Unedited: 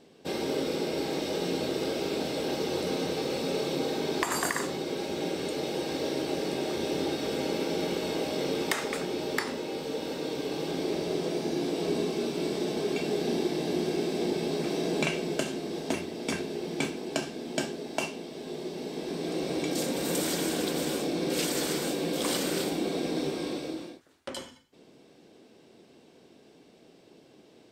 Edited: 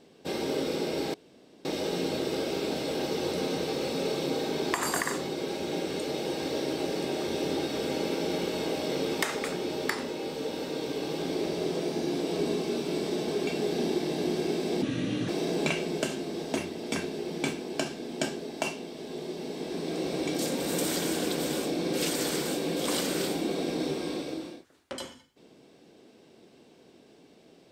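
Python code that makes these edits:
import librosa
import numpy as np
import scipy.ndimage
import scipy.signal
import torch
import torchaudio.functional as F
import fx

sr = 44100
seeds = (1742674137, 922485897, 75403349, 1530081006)

y = fx.edit(x, sr, fx.insert_room_tone(at_s=1.14, length_s=0.51),
    fx.speed_span(start_s=14.31, length_s=0.34, speed=0.73), tone=tone)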